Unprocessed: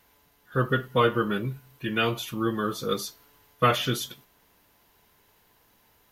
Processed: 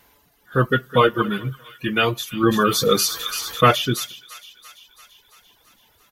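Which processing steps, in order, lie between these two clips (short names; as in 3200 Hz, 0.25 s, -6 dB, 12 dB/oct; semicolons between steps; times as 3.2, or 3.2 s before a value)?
de-hum 47.24 Hz, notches 3; 0.68–1.08 echo throw 0.21 s, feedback 40%, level -9.5 dB; reverb removal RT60 1.9 s; thin delay 0.338 s, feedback 62%, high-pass 2200 Hz, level -14 dB; 2.43–3.71 fast leveller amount 50%; gain +6.5 dB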